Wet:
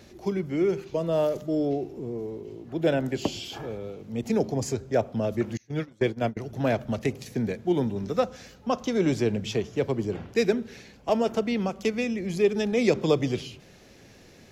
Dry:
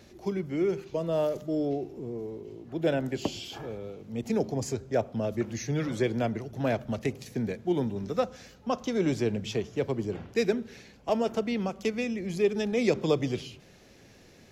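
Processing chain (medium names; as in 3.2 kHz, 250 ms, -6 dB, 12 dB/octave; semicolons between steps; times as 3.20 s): 5.57–6.37 s: gate -27 dBFS, range -28 dB; trim +3 dB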